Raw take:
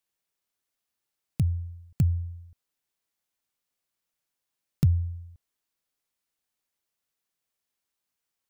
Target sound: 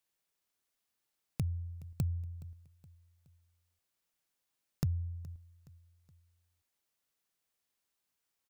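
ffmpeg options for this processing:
ffmpeg -i in.wav -af "acompressor=threshold=-39dB:ratio=2,aecho=1:1:420|840|1260:0.0944|0.0434|0.02" out.wav

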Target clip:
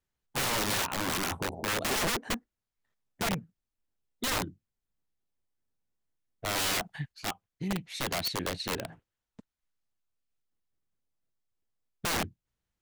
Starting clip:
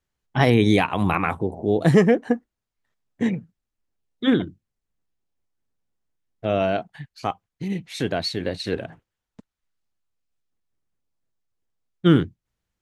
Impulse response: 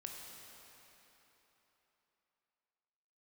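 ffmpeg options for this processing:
-filter_complex "[0:a]asettb=1/sr,asplit=3[link_01][link_02][link_03];[link_01]atrim=end=6.554[link_04];[link_02]atrim=start=6.55:end=7.12,asetpts=PTS-STARTPTS,afade=type=in:duration=0.004:curve=qsin,afade=type=out:start_time=0.566:duration=0.004:curve=qsin,acontrast=50[link_05];[link_03]atrim=start=7.116[link_06];[link_04][link_05]acrossfade=duration=0.004:curve1=hsin:curve2=qsin[link_07];[link_07][link_06]acrossfade=duration=0.004:curve1=qsin:curve2=hsin,aeval=exprs='(mod(9.44*val(0)+1,2)-1)/9.44':channel_layout=same,volume=-5dB"

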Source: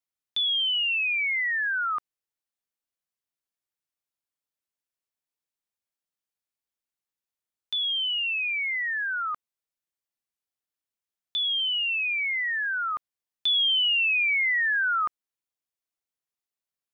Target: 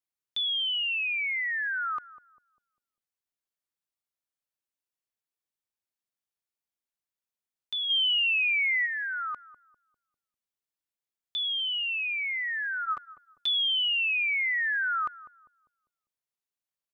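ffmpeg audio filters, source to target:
ffmpeg -i in.wav -filter_complex "[0:a]asplit=3[link_01][link_02][link_03];[link_01]afade=type=out:start_time=7.89:duration=0.02[link_04];[link_02]acontrast=52,afade=type=in:start_time=7.89:duration=0.02,afade=type=out:start_time=8.85:duration=0.02[link_05];[link_03]afade=type=in:start_time=8.85:duration=0.02[link_06];[link_04][link_05][link_06]amix=inputs=3:normalize=0,asplit=3[link_07][link_08][link_09];[link_07]afade=type=out:start_time=12.84:duration=0.02[link_10];[link_08]aecho=1:1:7:0.89,afade=type=in:start_time=12.84:duration=0.02,afade=type=out:start_time=13.47:duration=0.02[link_11];[link_09]afade=type=in:start_time=13.47:duration=0.02[link_12];[link_10][link_11][link_12]amix=inputs=3:normalize=0,asplit=2[link_13][link_14];[link_14]adelay=199,lowpass=frequency=800:poles=1,volume=-13dB,asplit=2[link_15][link_16];[link_16]adelay=199,lowpass=frequency=800:poles=1,volume=0.48,asplit=2[link_17][link_18];[link_18]adelay=199,lowpass=frequency=800:poles=1,volume=0.48,asplit=2[link_19][link_20];[link_20]adelay=199,lowpass=frequency=800:poles=1,volume=0.48,asplit=2[link_21][link_22];[link_22]adelay=199,lowpass=frequency=800:poles=1,volume=0.48[link_23];[link_15][link_17][link_19][link_21][link_23]amix=inputs=5:normalize=0[link_24];[link_13][link_24]amix=inputs=2:normalize=0,volume=-3.5dB" out.wav

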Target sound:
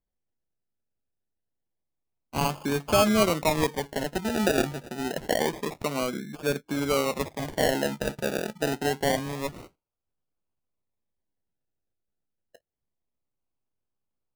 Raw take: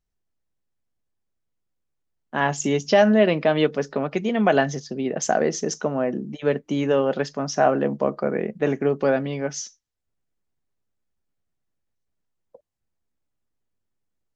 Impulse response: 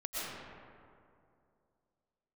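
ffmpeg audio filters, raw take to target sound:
-af "aresample=11025,aresample=44100,highshelf=frequency=3200:gain=9.5,acrusher=samples=32:mix=1:aa=0.000001:lfo=1:lforange=19.2:lforate=0.27,volume=-5.5dB"

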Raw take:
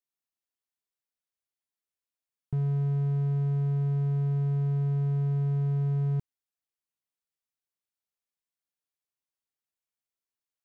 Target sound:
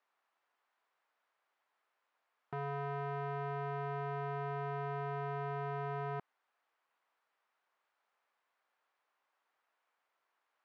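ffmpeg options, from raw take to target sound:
ffmpeg -i in.wav -filter_complex "[0:a]asplit=2[link_01][link_02];[link_02]highpass=frequency=720:poles=1,volume=32dB,asoftclip=type=tanh:threshold=-21.5dB[link_03];[link_01][link_03]amix=inputs=2:normalize=0,lowpass=frequency=1200:poles=1,volume=-6dB,bandpass=frequency=1100:width_type=q:width=0.95:csg=0" out.wav

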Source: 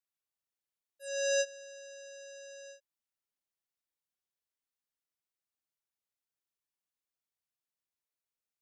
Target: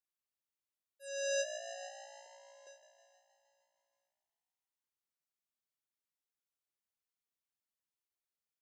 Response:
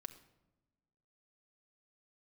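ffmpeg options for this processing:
-filter_complex "[0:a]asplit=2[link_01][link_02];[link_02]aecho=0:1:446|892|1338:0.15|0.0524|0.0183[link_03];[link_01][link_03]amix=inputs=2:normalize=0,asettb=1/sr,asplit=3[link_04][link_05][link_06];[link_04]atrim=end=2.264[link_07];[link_05]atrim=start=2.26:end=2.67,asetpts=PTS-STARTPTS,afade=type=in:duration=0.004:curve=qsin,afade=type=out:start_time=0.406:duration=0.004:curve=qsin,acrossover=split=460[link_08][link_09];[link_09]acompressor=threshold=-59dB:ratio=6[link_10];[link_08][link_10]amix=inputs=2:normalize=0[link_11];[link_06]atrim=start=2.666[link_12];[link_07][link_11]acrossfade=duration=0.004:curve1=hsin:curve2=qsin[link_13];[link_13][link_12]acrossfade=duration=0.004:curve1=qsin:curve2=hsin,asplit=2[link_14][link_15];[link_15]asplit=8[link_16][link_17][link_18][link_19][link_20][link_21][link_22][link_23];[link_16]adelay=157,afreqshift=58,volume=-10.5dB[link_24];[link_17]adelay=314,afreqshift=116,volume=-14.5dB[link_25];[link_18]adelay=471,afreqshift=174,volume=-18.5dB[link_26];[link_19]adelay=628,afreqshift=232,volume=-22.5dB[link_27];[link_20]adelay=785,afreqshift=290,volume=-26.6dB[link_28];[link_21]adelay=942,afreqshift=348,volume=-30.6dB[link_29];[link_22]adelay=1099,afreqshift=406,volume=-34.6dB[link_30];[link_23]adelay=1256,afreqshift=464,volume=-38.6dB[link_31];[link_24][link_25][link_26][link_27][link_28][link_29][link_30][link_31]amix=inputs=8:normalize=0[link_32];[link_14][link_32]amix=inputs=2:normalize=0,volume=-5dB"

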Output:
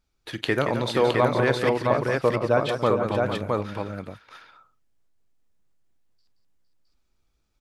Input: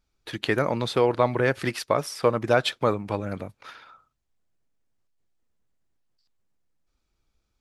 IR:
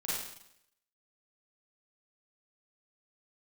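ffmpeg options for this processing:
-filter_complex "[0:a]asettb=1/sr,asplit=3[link_01][link_02][link_03];[link_01]atrim=end=1.694[link_04];[link_02]atrim=start=1.69:end=2.69,asetpts=PTS-STARTPTS,afade=type=in:duration=0.004:curve=qsin,afade=type=out:start_time=0.996:duration=0.004:curve=qsin,lowpass=frequency=1200:poles=1[link_05];[link_03]atrim=start=2.686[link_06];[link_04][link_05]acrossfade=duration=0.004:curve1=hsin:curve2=qsin[link_07];[link_07][link_06]acrossfade=duration=0.004:curve1=qsin:curve2=hsin,asplit=2[link_08][link_09];[link_09]aecho=0:1:43|175|459|664:0.141|0.376|0.316|0.708[link_10];[link_08][link_10]amix=inputs=2:normalize=0"

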